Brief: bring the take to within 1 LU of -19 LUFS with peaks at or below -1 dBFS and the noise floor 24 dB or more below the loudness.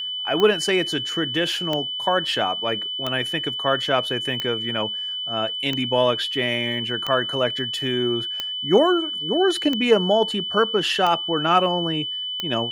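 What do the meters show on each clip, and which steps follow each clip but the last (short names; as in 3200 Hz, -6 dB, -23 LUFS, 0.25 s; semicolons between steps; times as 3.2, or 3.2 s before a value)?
clicks 10; steady tone 3000 Hz; tone level -26 dBFS; loudness -21.5 LUFS; peak -3.5 dBFS; loudness target -19.0 LUFS
-> de-click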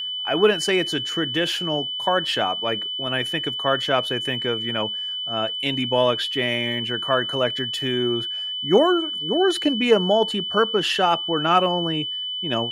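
clicks 0; steady tone 3000 Hz; tone level -26 dBFS
-> notch 3000 Hz, Q 30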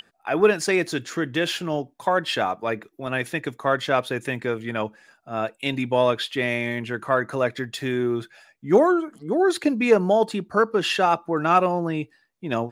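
steady tone none; loudness -23.5 LUFS; peak -4.0 dBFS; loudness target -19.0 LUFS
-> gain +4.5 dB; limiter -1 dBFS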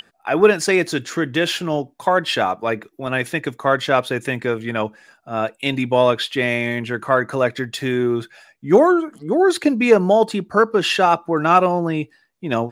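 loudness -19.0 LUFS; peak -1.0 dBFS; noise floor -60 dBFS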